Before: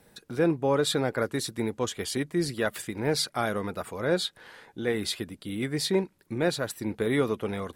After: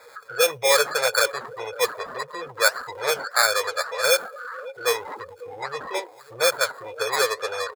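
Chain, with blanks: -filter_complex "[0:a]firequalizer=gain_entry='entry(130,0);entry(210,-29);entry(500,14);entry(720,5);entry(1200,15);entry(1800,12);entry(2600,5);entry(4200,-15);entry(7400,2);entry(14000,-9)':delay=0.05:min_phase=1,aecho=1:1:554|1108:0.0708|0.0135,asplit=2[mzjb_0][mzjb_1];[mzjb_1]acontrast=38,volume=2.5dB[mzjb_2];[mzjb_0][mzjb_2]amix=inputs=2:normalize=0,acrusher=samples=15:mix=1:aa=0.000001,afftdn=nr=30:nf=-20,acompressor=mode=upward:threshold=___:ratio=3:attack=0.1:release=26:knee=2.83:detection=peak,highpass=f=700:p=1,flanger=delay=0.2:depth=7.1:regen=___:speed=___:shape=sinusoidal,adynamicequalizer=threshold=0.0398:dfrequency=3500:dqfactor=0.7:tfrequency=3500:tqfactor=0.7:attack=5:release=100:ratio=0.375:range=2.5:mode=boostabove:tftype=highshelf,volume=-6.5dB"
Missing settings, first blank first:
-12dB, 70, 1.7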